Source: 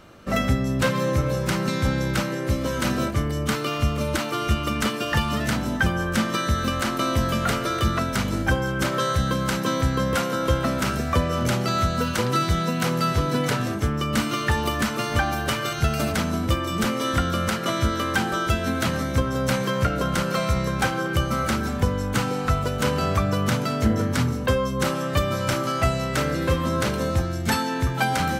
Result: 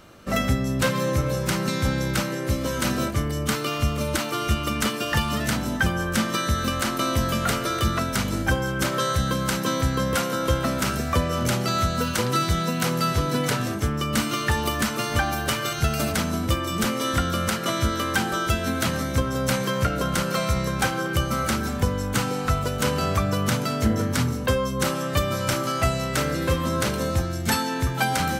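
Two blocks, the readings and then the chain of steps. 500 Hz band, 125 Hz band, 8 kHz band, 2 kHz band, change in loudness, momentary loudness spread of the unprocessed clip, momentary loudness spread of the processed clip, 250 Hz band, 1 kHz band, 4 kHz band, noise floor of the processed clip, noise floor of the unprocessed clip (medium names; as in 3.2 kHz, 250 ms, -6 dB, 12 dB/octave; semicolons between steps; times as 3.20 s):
-1.0 dB, -1.0 dB, +3.0 dB, -0.5 dB, -0.5 dB, 2 LU, 2 LU, -1.0 dB, -0.5 dB, +1.0 dB, -29 dBFS, -28 dBFS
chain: treble shelf 5 kHz +6 dB; trim -1 dB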